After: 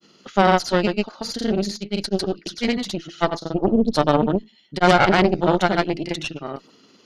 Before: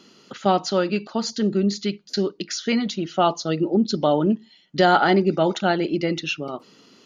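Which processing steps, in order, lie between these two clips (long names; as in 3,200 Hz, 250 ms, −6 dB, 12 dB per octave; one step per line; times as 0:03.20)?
granular cloud, pitch spread up and down by 0 semitones
harmonic generator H 4 −9 dB, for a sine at −5 dBFS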